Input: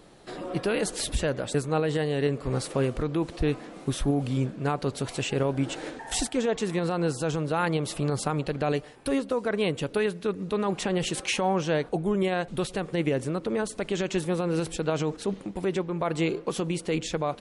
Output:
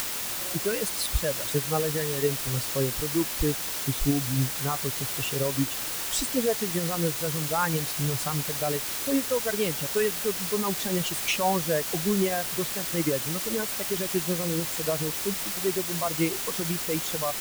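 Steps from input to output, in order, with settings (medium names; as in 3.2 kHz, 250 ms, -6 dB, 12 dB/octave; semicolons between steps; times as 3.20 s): expander on every frequency bin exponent 2; word length cut 6-bit, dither triangular; upward compressor, threshold -31 dBFS; trim +3.5 dB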